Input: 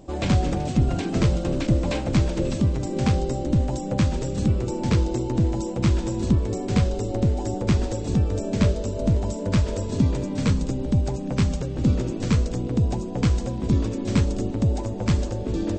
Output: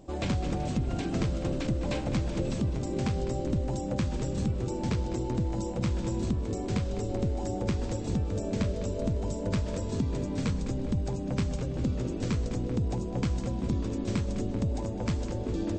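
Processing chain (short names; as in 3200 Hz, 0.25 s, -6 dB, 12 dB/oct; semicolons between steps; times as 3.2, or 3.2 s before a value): compressor, threshold -20 dBFS, peak gain reduction 6.5 dB; darkening echo 0.205 s, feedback 61%, low-pass 4500 Hz, level -11 dB; gain -5 dB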